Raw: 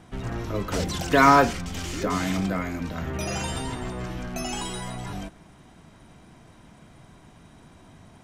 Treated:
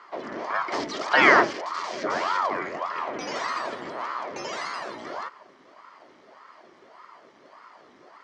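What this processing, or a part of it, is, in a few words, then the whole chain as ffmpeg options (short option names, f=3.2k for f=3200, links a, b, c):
voice changer toy: -af "aeval=exprs='val(0)*sin(2*PI*650*n/s+650*0.85/1.7*sin(2*PI*1.7*n/s))':c=same,highpass=470,equalizer=f=490:t=q:w=4:g=-7,equalizer=f=810:t=q:w=4:g=-9,equalizer=f=1.5k:t=q:w=4:g=-6,equalizer=f=2.6k:t=q:w=4:g=-10,equalizer=f=3.7k:t=q:w=4:g=-9,lowpass=f=4.7k:w=0.5412,lowpass=f=4.7k:w=1.3066,volume=8.5dB"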